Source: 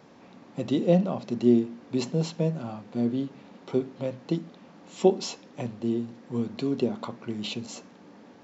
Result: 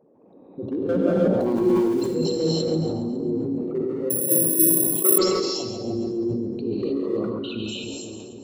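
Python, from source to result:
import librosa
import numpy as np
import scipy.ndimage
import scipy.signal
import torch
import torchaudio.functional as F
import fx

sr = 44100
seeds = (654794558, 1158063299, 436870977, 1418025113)

y = fx.envelope_sharpen(x, sr, power=3.0)
y = fx.transient(y, sr, attack_db=3, sustain_db=8)
y = fx.dmg_crackle(y, sr, seeds[0], per_s=600.0, level_db=-37.0, at=(1.39, 1.83), fade=0.02)
y = fx.bandpass_q(y, sr, hz=390.0, q=1.2, at=(6.66, 7.09))
y = np.clip(y, -10.0 ** (-15.0 / 20.0), 10.0 ** (-15.0 / 20.0))
y = fx.echo_split(y, sr, split_hz=430.0, low_ms=486, high_ms=138, feedback_pct=52, wet_db=-8.5)
y = fx.rev_gated(y, sr, seeds[1], gate_ms=340, shape='rising', drr_db=-5.5)
y = fx.resample_bad(y, sr, factor=4, down='filtered', up='zero_stuff', at=(4.1, 5.18))
y = fx.sustainer(y, sr, db_per_s=25.0)
y = y * librosa.db_to_amplitude(-6.0)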